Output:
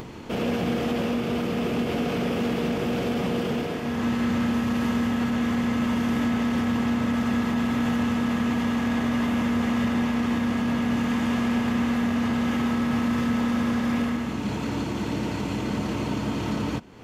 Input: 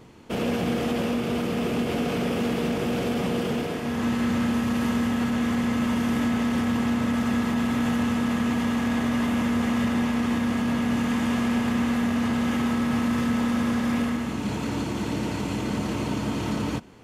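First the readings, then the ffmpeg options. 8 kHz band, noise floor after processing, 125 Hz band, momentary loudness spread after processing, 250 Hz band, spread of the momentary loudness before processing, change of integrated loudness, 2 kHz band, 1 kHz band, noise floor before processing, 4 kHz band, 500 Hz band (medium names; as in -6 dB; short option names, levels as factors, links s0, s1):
-3.0 dB, -30 dBFS, 0.0 dB, 4 LU, 0.0 dB, 4 LU, 0.0 dB, 0.0 dB, 0.0 dB, -30 dBFS, -0.5 dB, 0.0 dB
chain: -af "equalizer=f=9700:t=o:w=0.85:g=-6,acompressor=mode=upward:threshold=0.0355:ratio=2.5"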